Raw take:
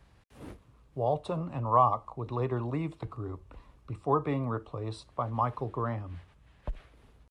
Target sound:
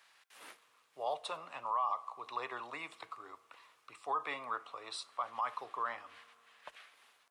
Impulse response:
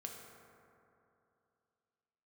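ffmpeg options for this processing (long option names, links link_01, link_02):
-filter_complex "[0:a]highpass=1400,alimiter=level_in=7.5dB:limit=-24dB:level=0:latency=1:release=41,volume=-7.5dB,asplit=2[link_01][link_02];[1:a]atrim=start_sample=2205[link_03];[link_02][link_03]afir=irnorm=-1:irlink=0,volume=-13.5dB[link_04];[link_01][link_04]amix=inputs=2:normalize=0,volume=5dB"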